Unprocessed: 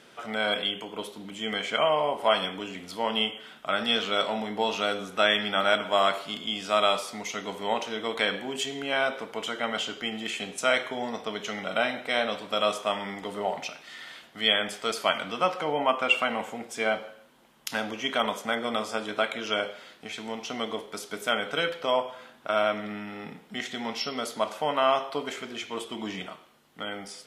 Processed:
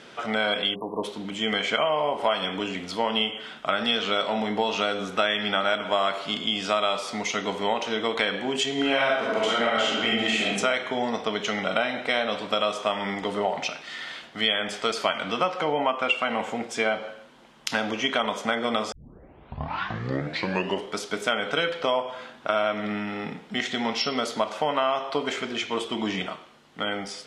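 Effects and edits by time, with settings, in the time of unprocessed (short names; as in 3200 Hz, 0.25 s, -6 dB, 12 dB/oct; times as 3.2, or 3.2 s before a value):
0.75–1.04 spectral delete 1200–9600 Hz
8.74–10.48 reverb throw, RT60 0.86 s, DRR -5 dB
18.92 tape start 2.05 s
whole clip: LPF 6700 Hz 12 dB/oct; compressor 4:1, threshold -28 dBFS; gain +7 dB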